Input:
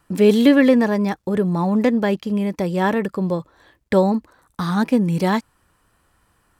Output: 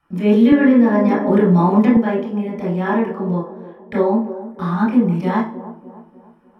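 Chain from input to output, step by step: band-limited delay 0.299 s, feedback 45%, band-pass 440 Hz, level -12 dB; reverb RT60 0.45 s, pre-delay 21 ms, DRR -7 dB; 0.52–1.97 three-band squash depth 100%; gain -17 dB

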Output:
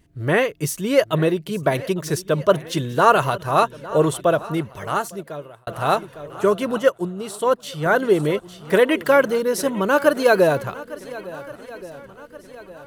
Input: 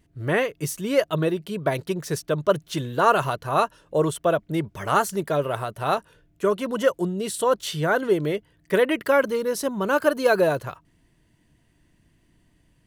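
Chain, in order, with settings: swung echo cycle 1.426 s, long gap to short 1.5:1, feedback 43%, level -18 dB; 4.19–5.67 fade out; 6.78–7.86 upward expander 1.5:1, over -40 dBFS; gain +4 dB

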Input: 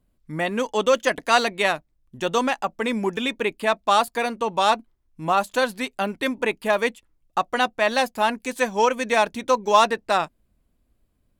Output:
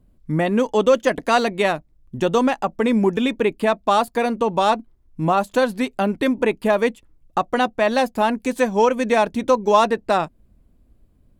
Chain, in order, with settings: in parallel at +1 dB: compressor, threshold -28 dBFS, peak gain reduction 16 dB; on the sum: tilt shelf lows +5.5 dB, about 730 Hz

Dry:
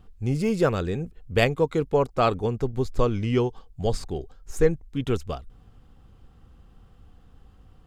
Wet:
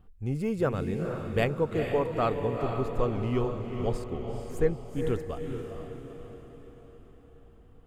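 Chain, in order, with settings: bell 5200 Hz -9 dB 1.4 oct; diffused feedback echo 0.456 s, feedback 52%, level -5.5 dB; gain -5.5 dB

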